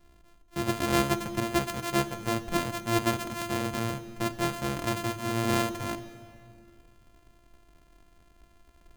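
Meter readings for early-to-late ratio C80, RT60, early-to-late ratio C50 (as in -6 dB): 14.0 dB, 2.4 s, 13.0 dB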